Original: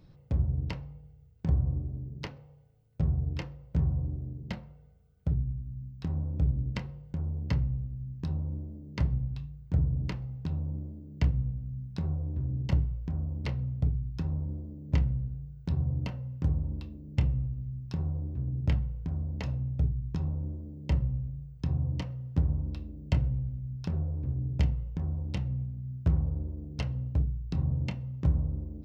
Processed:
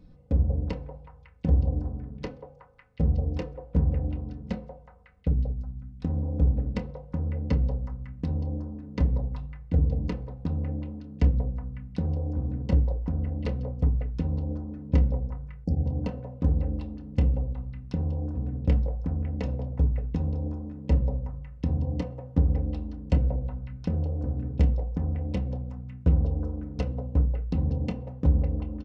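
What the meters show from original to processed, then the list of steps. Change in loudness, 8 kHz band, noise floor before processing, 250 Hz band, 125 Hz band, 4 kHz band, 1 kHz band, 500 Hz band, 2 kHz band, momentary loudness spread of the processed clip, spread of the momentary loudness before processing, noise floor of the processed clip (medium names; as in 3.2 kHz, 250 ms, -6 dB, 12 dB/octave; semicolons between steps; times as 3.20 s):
+3.5 dB, no reading, -55 dBFS, +5.5 dB, +2.5 dB, -3.0 dB, +5.0 dB, +10.0 dB, -1.0 dB, 10 LU, 9 LU, -50 dBFS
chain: tilt shelf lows +4.5 dB, about 680 Hz; comb 4 ms, depth 63%; repeats whose band climbs or falls 184 ms, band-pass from 640 Hz, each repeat 0.7 oct, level -2 dB; dynamic bell 450 Hz, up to +7 dB, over -48 dBFS, Q 1.2; spectral selection erased 15.64–15.85 s, 860–4400 Hz; resampled via 22.05 kHz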